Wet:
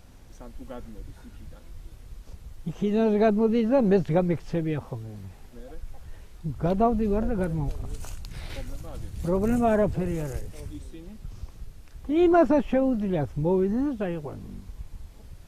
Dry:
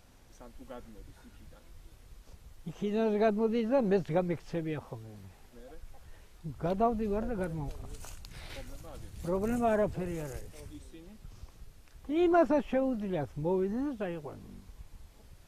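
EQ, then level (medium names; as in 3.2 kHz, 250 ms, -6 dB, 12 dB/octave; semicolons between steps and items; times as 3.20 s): bass shelf 300 Hz +6.5 dB; +4.0 dB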